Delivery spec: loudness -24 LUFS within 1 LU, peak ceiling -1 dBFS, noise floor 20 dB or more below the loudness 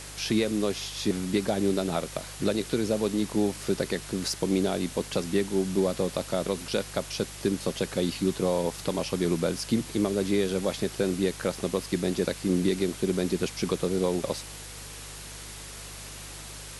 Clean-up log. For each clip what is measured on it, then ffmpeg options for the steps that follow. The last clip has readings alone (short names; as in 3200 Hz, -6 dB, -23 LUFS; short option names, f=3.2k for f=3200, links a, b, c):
hum 50 Hz; harmonics up to 150 Hz; hum level -44 dBFS; noise floor -42 dBFS; noise floor target -49 dBFS; loudness -28.5 LUFS; peak -12.0 dBFS; loudness target -24.0 LUFS
-> -af "bandreject=f=50:t=h:w=4,bandreject=f=100:t=h:w=4,bandreject=f=150:t=h:w=4"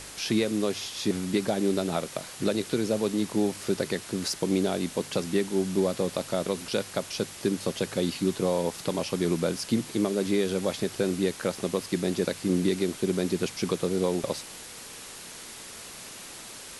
hum none; noise floor -43 dBFS; noise floor target -49 dBFS
-> -af "afftdn=nr=6:nf=-43"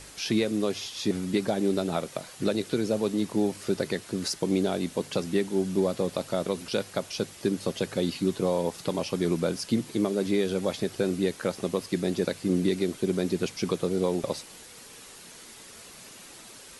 noise floor -48 dBFS; noise floor target -49 dBFS
-> -af "afftdn=nr=6:nf=-48"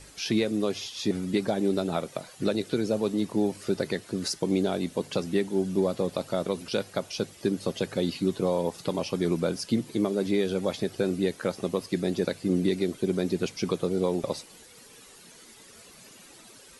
noise floor -51 dBFS; loudness -28.5 LUFS; peak -13.0 dBFS; loudness target -24.0 LUFS
-> -af "volume=4.5dB"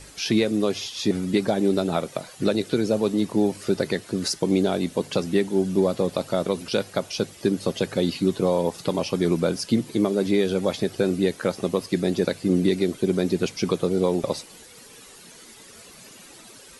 loudness -24.0 LUFS; peak -8.5 dBFS; noise floor -47 dBFS